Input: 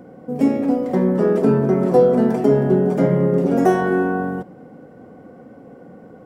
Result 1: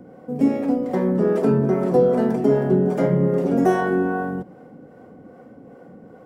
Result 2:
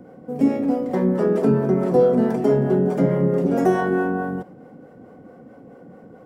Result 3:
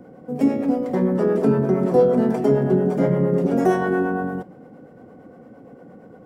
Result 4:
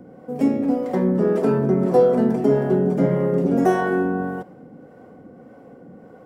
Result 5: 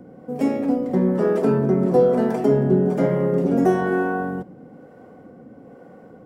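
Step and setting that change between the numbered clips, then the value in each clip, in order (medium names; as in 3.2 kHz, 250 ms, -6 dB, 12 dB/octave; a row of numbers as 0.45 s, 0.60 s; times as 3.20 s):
harmonic tremolo, rate: 2.5 Hz, 4.6 Hz, 8.7 Hz, 1.7 Hz, 1.1 Hz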